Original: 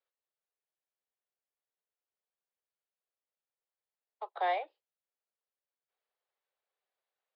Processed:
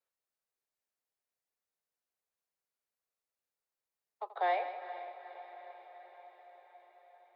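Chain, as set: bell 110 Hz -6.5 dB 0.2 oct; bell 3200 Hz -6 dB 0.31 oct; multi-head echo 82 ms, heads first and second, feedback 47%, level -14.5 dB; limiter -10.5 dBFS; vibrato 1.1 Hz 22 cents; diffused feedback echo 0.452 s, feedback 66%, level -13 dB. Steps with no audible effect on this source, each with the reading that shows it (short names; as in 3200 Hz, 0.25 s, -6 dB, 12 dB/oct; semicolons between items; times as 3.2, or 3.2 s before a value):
bell 110 Hz: input band starts at 340 Hz; limiter -10.5 dBFS: input peak -21.5 dBFS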